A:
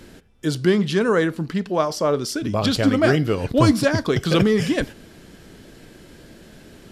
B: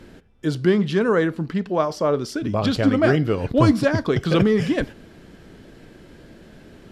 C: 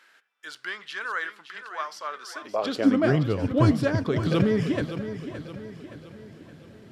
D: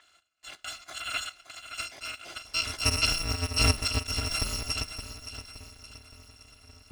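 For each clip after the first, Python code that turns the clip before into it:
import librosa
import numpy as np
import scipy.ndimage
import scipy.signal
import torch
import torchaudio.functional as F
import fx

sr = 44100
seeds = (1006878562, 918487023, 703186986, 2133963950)

y1 = fx.high_shelf(x, sr, hz=4300.0, db=-11.0)
y2 = fx.filter_sweep_highpass(y1, sr, from_hz=1400.0, to_hz=95.0, start_s=2.2, end_s=3.26, q=1.7)
y2 = fx.echo_feedback(y2, sr, ms=569, feedback_pct=48, wet_db=-11.0)
y2 = y2 * 10.0 ** (-6.0 / 20.0)
y3 = fx.bit_reversed(y2, sr, seeds[0], block=256)
y3 = fx.air_absorb(y3, sr, metres=110.0)
y3 = y3 * 10.0 ** (3.5 / 20.0)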